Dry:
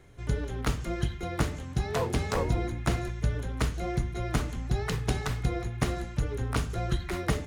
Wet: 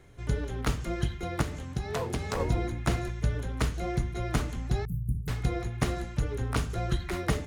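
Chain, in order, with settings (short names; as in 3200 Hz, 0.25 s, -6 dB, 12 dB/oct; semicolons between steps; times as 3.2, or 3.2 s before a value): 1.41–2.4 compressor, threshold -27 dBFS, peak gain reduction 6 dB; 4.85–5.28 inverse Chebyshev band-stop 750–4300 Hz, stop band 70 dB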